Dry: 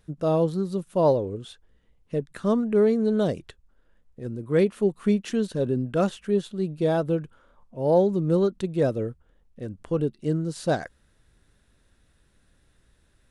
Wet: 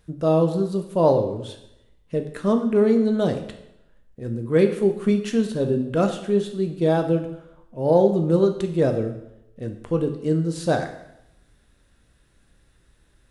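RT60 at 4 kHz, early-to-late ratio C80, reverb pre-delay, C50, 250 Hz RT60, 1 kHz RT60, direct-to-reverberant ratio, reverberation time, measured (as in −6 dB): 0.75 s, 11.5 dB, 5 ms, 9.0 dB, 0.85 s, 0.85 s, 5.0 dB, 0.85 s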